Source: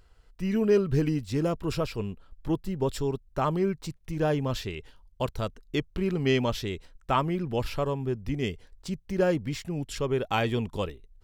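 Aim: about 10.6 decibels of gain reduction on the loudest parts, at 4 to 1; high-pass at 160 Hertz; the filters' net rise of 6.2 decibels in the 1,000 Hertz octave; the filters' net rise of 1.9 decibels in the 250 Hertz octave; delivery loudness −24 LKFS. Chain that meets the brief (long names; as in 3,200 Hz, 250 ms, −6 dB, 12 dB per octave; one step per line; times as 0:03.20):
high-pass filter 160 Hz
parametric band 250 Hz +3.5 dB
parametric band 1,000 Hz +7.5 dB
downward compressor 4 to 1, threshold −28 dBFS
level +9.5 dB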